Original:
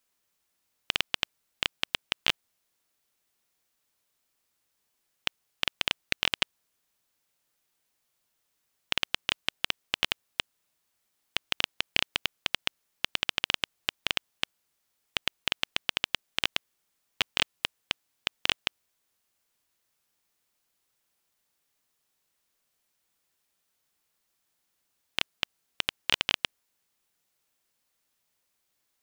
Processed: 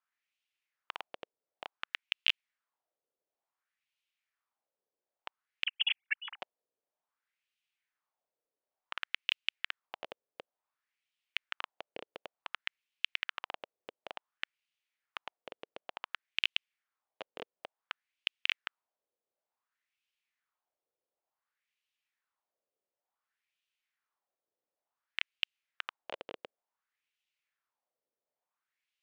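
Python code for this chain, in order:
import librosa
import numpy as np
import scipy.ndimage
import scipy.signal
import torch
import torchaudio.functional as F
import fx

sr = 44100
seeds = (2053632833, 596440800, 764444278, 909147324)

y = fx.sine_speech(x, sr, at=(5.65, 6.41))
y = fx.wah_lfo(y, sr, hz=0.56, low_hz=470.0, high_hz=2800.0, q=2.9)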